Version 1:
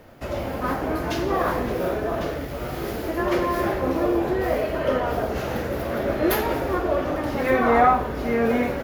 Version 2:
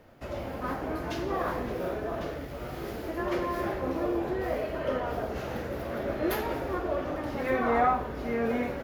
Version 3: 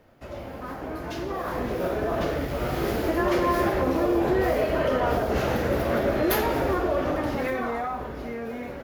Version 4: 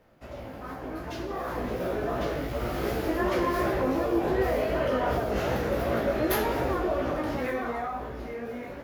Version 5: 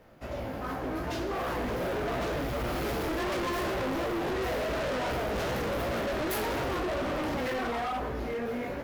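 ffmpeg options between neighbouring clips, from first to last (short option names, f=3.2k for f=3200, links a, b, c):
-af "highshelf=f=8k:g=-4.5,volume=-7.5dB"
-filter_complex "[0:a]acrossover=split=4200[a][b];[a]alimiter=level_in=1dB:limit=-24dB:level=0:latency=1:release=94,volume=-1dB[c];[c][b]amix=inputs=2:normalize=0,dynaudnorm=f=270:g=13:m=12dB,volume=-1.5dB"
-af "flanger=delay=15.5:depth=4.1:speed=2.7"
-af "volume=34dB,asoftclip=hard,volume=-34dB,volume=4.5dB"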